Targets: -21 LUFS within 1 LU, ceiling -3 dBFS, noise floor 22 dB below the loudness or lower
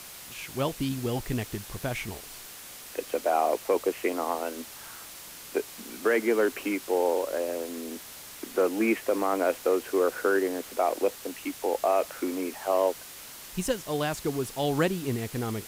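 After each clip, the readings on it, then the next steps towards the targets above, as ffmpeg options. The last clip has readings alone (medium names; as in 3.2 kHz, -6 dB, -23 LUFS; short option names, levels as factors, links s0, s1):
noise floor -45 dBFS; noise floor target -51 dBFS; loudness -28.5 LUFS; peak level -12.0 dBFS; loudness target -21.0 LUFS
-> -af "afftdn=nr=6:nf=-45"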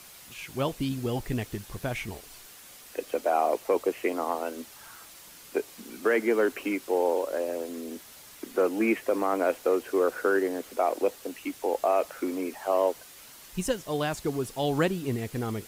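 noise floor -49 dBFS; noise floor target -51 dBFS
-> -af "afftdn=nr=6:nf=-49"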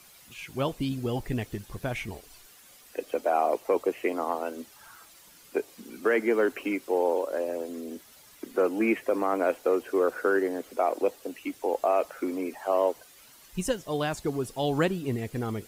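noise floor -54 dBFS; loudness -29.0 LUFS; peak level -12.5 dBFS; loudness target -21.0 LUFS
-> -af "volume=2.51"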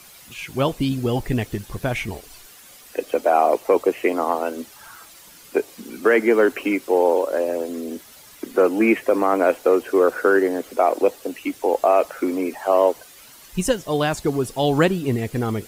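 loudness -21.0 LUFS; peak level -4.5 dBFS; noise floor -46 dBFS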